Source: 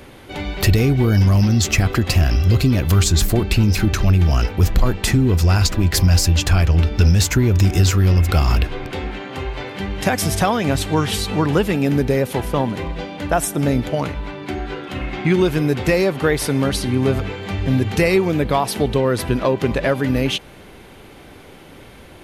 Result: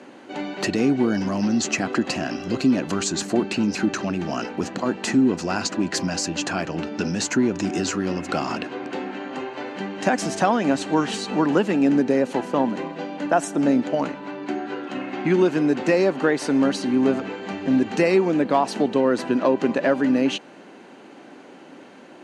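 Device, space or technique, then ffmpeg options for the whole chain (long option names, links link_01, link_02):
television speaker: -af "highpass=frequency=210:width=0.5412,highpass=frequency=210:width=1.3066,equalizer=frequency=270:width_type=q:width=4:gain=3,equalizer=frequency=440:width_type=q:width=4:gain=-4,equalizer=frequency=1200:width_type=q:width=4:gain=-3,equalizer=frequency=2200:width_type=q:width=4:gain=-7,equalizer=frequency=3500:width_type=q:width=4:gain=-10,equalizer=frequency=5200:width_type=q:width=4:gain=-7,lowpass=frequency=6900:width=0.5412,lowpass=frequency=6900:width=1.3066"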